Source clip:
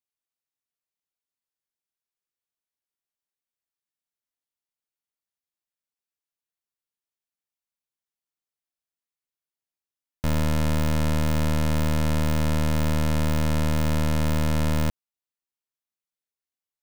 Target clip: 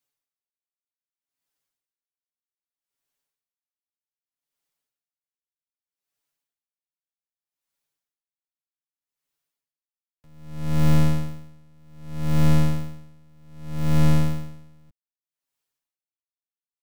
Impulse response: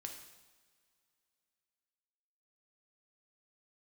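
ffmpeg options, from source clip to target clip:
-filter_complex "[0:a]aecho=1:1:7.1:0.88,acrossover=split=250[s0][s1];[s1]acompressor=threshold=0.0251:ratio=6[s2];[s0][s2]amix=inputs=2:normalize=0,asplit=2[s3][s4];[s4]volume=15.8,asoftclip=hard,volume=0.0631,volume=0.251[s5];[s3][s5]amix=inputs=2:normalize=0,aeval=exprs='val(0)*pow(10,-38*(0.5-0.5*cos(2*PI*0.64*n/s))/20)':c=same,volume=1.78"

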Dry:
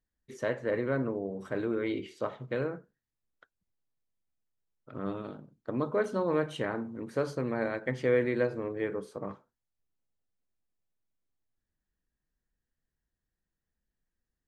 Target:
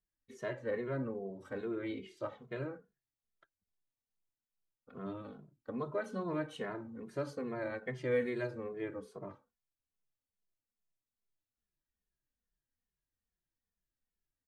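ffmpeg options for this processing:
-filter_complex "[0:a]asettb=1/sr,asplit=3[s0][s1][s2];[s0]atrim=end=8.114[s3];[s1]atrim=start=8.11:end=8.51,asetpts=PTS-STARTPTS,afade=t=in:d=0.004:c=qsin,afade=t=out:st=0.396:d=0.004:c=qsin,highshelf=f=5100:g=11.5[s4];[s2]atrim=start=8.506[s5];[s3][s4]acrossfade=d=0.004:c1=hsin:c2=qsin[s6];[s6][s5]acrossfade=d=0.004:c1=qsin:c2=hsin,asplit=2[s7][s8];[s8]adelay=2.4,afreqshift=-2.4[s9];[s7][s9]amix=inputs=2:normalize=1,volume=0.631"

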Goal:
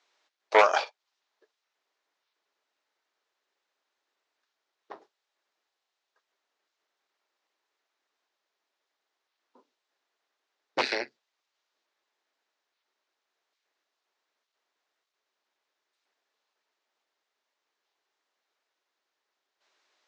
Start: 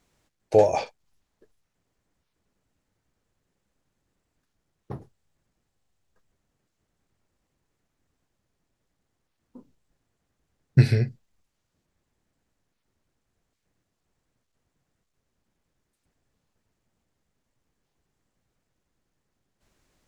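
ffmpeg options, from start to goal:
-af "aeval=exprs='0.562*(cos(1*acos(clip(val(0)/0.562,-1,1)))-cos(1*PI/2))+0.158*(cos(6*acos(clip(val(0)/0.562,-1,1)))-cos(6*PI/2))':c=same,highpass=f=470:w=0.5412,highpass=f=470:w=1.3066,equalizer=f=510:t=q:w=4:g=-7,equalizer=f=720:t=q:w=4:g=-3,equalizer=f=3800:t=q:w=4:g=3,lowpass=f=5900:w=0.5412,lowpass=f=5900:w=1.3066,volume=1.19"

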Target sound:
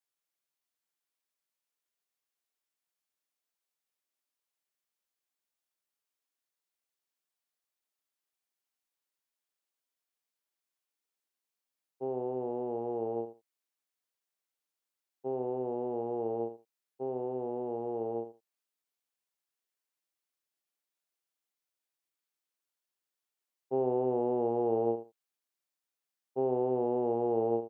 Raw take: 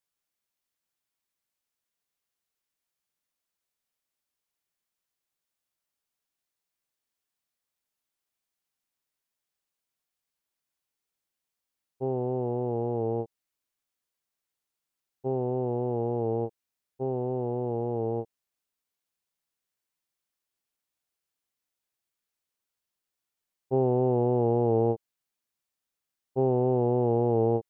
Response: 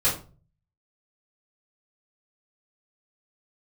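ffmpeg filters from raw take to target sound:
-af "highpass=260,aecho=1:1:78|156:0.282|0.0479,volume=0.631"

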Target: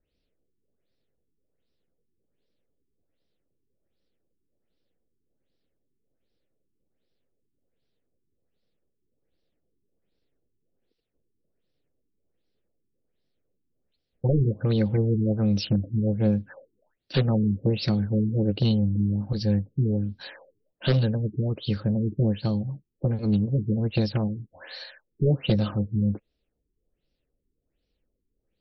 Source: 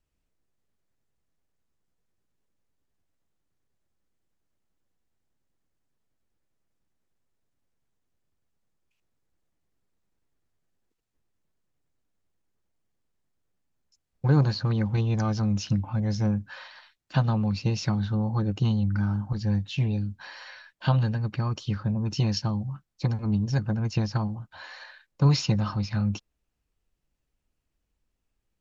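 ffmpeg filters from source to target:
-af "aeval=exprs='0.141*(abs(mod(val(0)/0.141+3,4)-2)-1)':c=same,equalizer=f=250:t=o:w=1:g=3,equalizer=f=500:t=o:w=1:g=11,equalizer=f=1000:t=o:w=1:g=-10,equalizer=f=4000:t=o:w=1:g=11,afftfilt=real='re*lt(b*sr/1024,420*pow(6000/420,0.5+0.5*sin(2*PI*1.3*pts/sr)))':imag='im*lt(b*sr/1024,420*pow(6000/420,0.5+0.5*sin(2*PI*1.3*pts/sr)))':win_size=1024:overlap=0.75"

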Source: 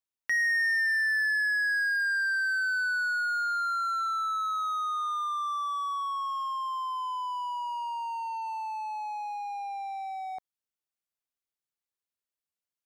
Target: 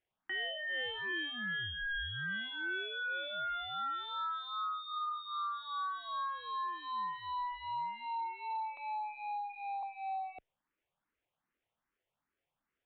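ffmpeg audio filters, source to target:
-filter_complex "[0:a]asplit=3[s0][s1][s2];[s0]afade=t=out:st=0.69:d=0.02[s3];[s1]equalizer=f=1100:t=o:w=1.1:g=8,afade=t=in:st=0.69:d=0.02,afade=t=out:st=1.11:d=0.02[s4];[s2]afade=t=in:st=1.11:d=0.02[s5];[s3][s4][s5]amix=inputs=3:normalize=0,asettb=1/sr,asplit=3[s6][s7][s8];[s6]atrim=end=8.774[s9];[s7]atrim=start=8.77:end=9.83,asetpts=PTS-STARTPTS,afade=t=in:d=0.004:c=qsin,afade=t=out:st=1.056:d=0.004:c=qsin,highpass=f=870:w=0.5412,highpass=f=870:w=1.3066[s10];[s8]atrim=start=9.826[s11];[s9][s10]acrossfade=d=0.004:c1=hsin:c2=qsin[s12];[s12][s11]acrossfade=d=0.004:c1=qsin:c2=hsin,acrusher=samples=9:mix=1:aa=0.000001,acontrast=27,aeval=exprs='0.188*(cos(1*acos(clip(val(0)/0.188,-1,1)))-cos(1*PI/2))+0.00531*(cos(3*acos(clip(val(0)/0.188,-1,1)))-cos(3*PI/2))+0.00119*(cos(6*acos(clip(val(0)/0.188,-1,1)))-cos(6*PI/2))':c=same,asoftclip=type=tanh:threshold=0.0168,asettb=1/sr,asplit=3[s13][s14][s15];[s13]atrim=end=2.194[s16];[s14]atrim=start=2.19:end=2.64,asetpts=PTS-STARTPTS,afade=t=in:d=0.004:c=qsin,afade=t=out:st=0.446:d=0.004:c=qsin,acrusher=bits=5:mode=log:mix=0:aa=0.000001[s17];[s15]atrim=start=2.636[s18];[s16][s17]acrossfade=d=0.004:c1=hsin:c2=qsin[s19];[s19][s18]acrossfade=d=0.004:c1=qsin:c2=hsin,aresample=8000,aresample=44100,asplit=2[s20][s21];[s21]afreqshift=2.5[s22];[s20][s22]amix=inputs=2:normalize=1,volume=1.19"

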